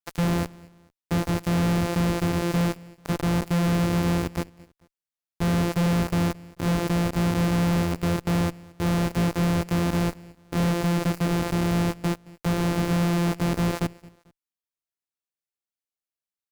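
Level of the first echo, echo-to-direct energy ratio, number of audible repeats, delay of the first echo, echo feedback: −23.0 dB, −22.5 dB, 2, 221 ms, 37%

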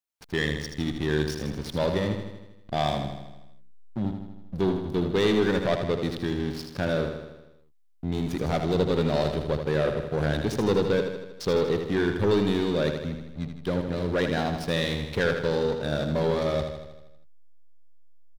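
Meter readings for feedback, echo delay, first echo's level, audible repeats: 59%, 79 ms, −7.0 dB, 7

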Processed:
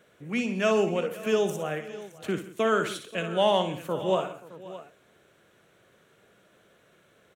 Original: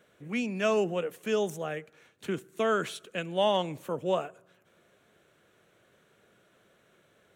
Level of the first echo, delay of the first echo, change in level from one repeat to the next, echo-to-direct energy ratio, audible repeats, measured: −9.0 dB, 59 ms, repeats not evenly spaced, −7.0 dB, 5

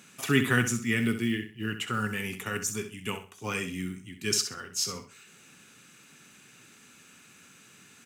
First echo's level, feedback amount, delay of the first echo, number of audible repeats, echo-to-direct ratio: −10.0 dB, 26%, 65 ms, 3, −9.5 dB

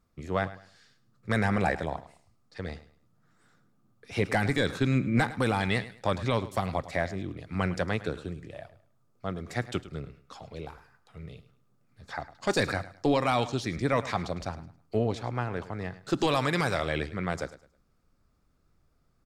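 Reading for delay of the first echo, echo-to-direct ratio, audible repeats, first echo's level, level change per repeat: 105 ms, −15.5 dB, 2, −16.0 dB, −11.5 dB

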